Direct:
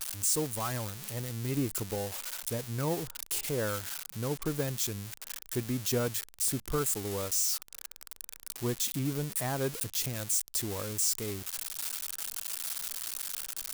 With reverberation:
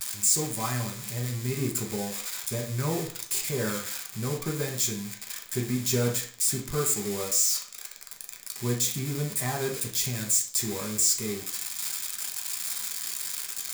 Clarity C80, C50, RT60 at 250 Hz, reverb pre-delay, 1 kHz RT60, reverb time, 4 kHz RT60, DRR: 13.0 dB, 8.0 dB, 0.50 s, 3 ms, 0.50 s, 0.50 s, 0.40 s, -1.0 dB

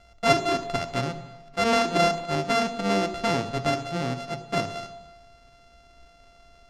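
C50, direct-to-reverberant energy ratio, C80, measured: 12.0 dB, 9.0 dB, 13.5 dB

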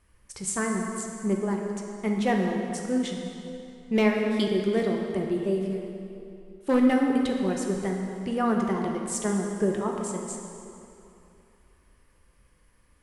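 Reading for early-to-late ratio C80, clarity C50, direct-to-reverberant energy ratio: 3.5 dB, 2.5 dB, 0.5 dB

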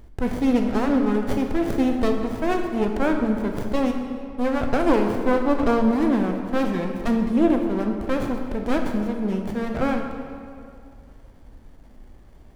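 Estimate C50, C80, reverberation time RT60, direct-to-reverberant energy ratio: 4.5 dB, 6.0 dB, 2.3 s, 3.0 dB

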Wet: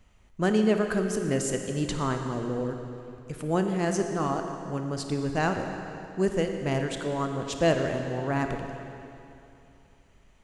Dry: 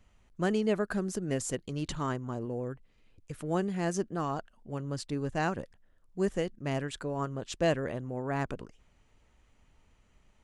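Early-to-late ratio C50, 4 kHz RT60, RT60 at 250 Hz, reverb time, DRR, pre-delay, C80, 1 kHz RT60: 5.0 dB, 2.5 s, 2.8 s, 2.8 s, 4.5 dB, 28 ms, 6.0 dB, 2.8 s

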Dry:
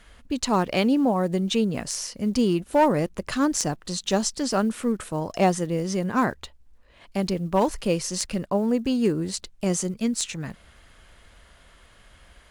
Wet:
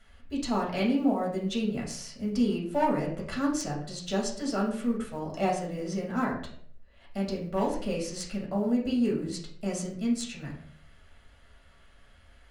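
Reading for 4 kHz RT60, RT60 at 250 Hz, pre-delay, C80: 0.40 s, 0.65 s, 4 ms, 10.0 dB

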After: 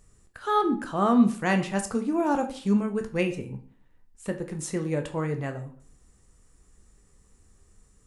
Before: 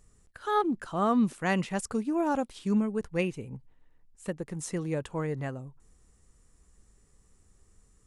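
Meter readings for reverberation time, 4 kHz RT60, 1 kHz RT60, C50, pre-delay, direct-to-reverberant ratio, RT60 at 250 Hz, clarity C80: 0.50 s, 0.35 s, 0.50 s, 12.0 dB, 13 ms, 5.5 dB, 0.50 s, 16.0 dB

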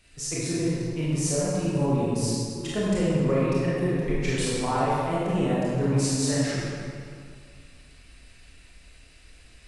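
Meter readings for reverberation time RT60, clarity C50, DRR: 2.3 s, -4.0 dB, -8.5 dB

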